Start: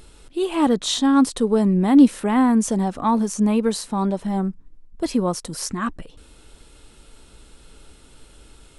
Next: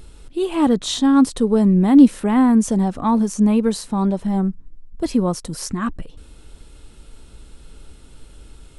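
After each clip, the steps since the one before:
low-shelf EQ 240 Hz +8 dB
level −1 dB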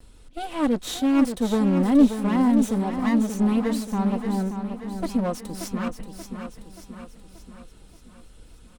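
lower of the sound and its delayed copy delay 4 ms
on a send: repeating echo 581 ms, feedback 52%, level −8 dB
on the sum: level −6 dB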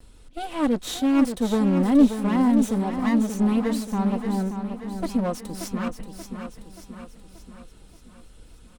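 no processing that can be heard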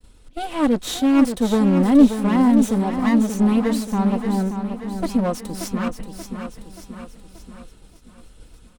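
downward expander −44 dBFS
level +4 dB

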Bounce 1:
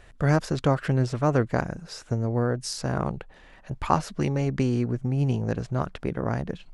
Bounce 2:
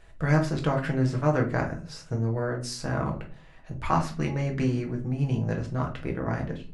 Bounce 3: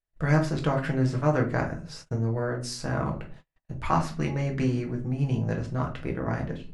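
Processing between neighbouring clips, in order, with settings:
dynamic equaliser 1,900 Hz, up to +6 dB, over −46 dBFS, Q 1.3; convolution reverb RT60 0.40 s, pre-delay 6 ms, DRR 0.5 dB; level −6 dB
noise gate −44 dBFS, range −38 dB

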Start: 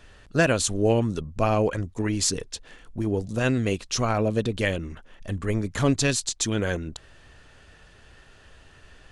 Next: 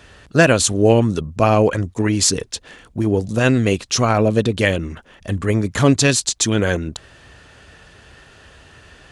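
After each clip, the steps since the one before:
high-pass filter 56 Hz
level +8 dB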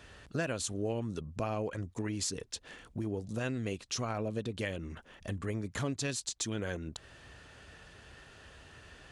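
downward compressor 2.5 to 1, threshold −29 dBFS, peak gain reduction 14 dB
level −8.5 dB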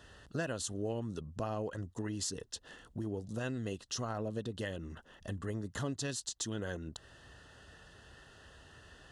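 Butterworth band-reject 2,300 Hz, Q 3.9
level −2.5 dB

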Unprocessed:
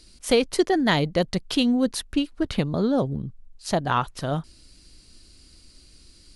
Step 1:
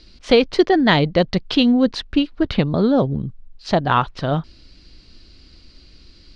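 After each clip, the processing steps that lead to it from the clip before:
low-pass filter 4,700 Hz 24 dB per octave
level +6 dB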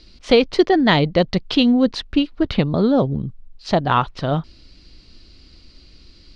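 parametric band 1,600 Hz −3 dB 0.24 octaves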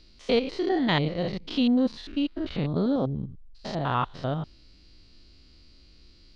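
spectrum averaged block by block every 100 ms
level −6.5 dB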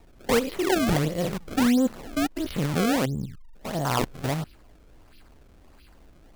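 sample-and-hold swept by an LFO 27×, swing 160% 1.5 Hz
level +1.5 dB

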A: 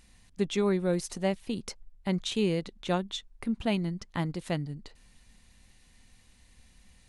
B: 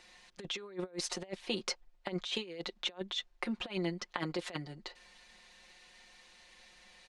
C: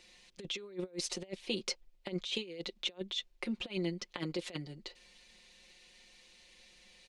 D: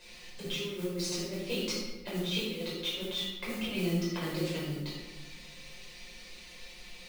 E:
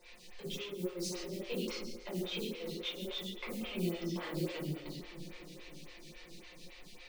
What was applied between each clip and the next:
three-way crossover with the lows and the highs turned down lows −22 dB, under 360 Hz, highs −19 dB, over 6,300 Hz; comb filter 5.6 ms, depth 72%; compressor whose output falls as the input rises −37 dBFS, ratio −0.5
flat-topped bell 1,100 Hz −8 dB
downward compressor 1.5 to 1, threshold −54 dBFS, peak gain reduction 8.5 dB; noise that follows the level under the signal 14 dB; rectangular room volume 560 cubic metres, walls mixed, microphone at 5.2 metres
flanger 0.84 Hz, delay 5.6 ms, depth 9.5 ms, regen −71%; feedback delay with all-pass diffusion 939 ms, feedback 42%, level −15 dB; phaser with staggered stages 3.6 Hz; level +2.5 dB

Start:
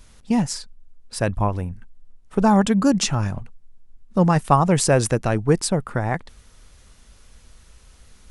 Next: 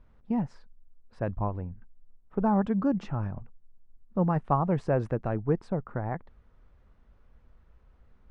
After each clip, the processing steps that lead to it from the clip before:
low-pass filter 1,300 Hz 12 dB per octave
level −8.5 dB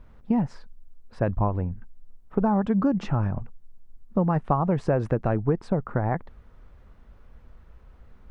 downward compressor 6 to 1, threshold −27 dBFS, peak gain reduction 8.5 dB
level +8.5 dB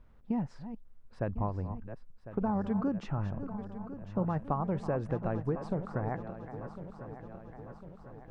feedback delay that plays each chunk backwards 526 ms, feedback 74%, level −11 dB
level −9 dB

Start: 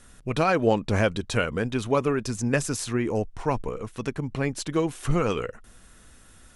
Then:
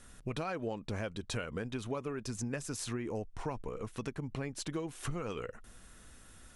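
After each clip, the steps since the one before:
downward compressor 6 to 1, threshold −31 dBFS, peak gain reduction 14.5 dB
level −3.5 dB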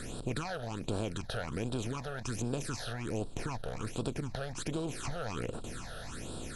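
compressor on every frequency bin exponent 0.4
all-pass phaser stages 8, 1.3 Hz, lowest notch 290–2,000 Hz
level −2 dB

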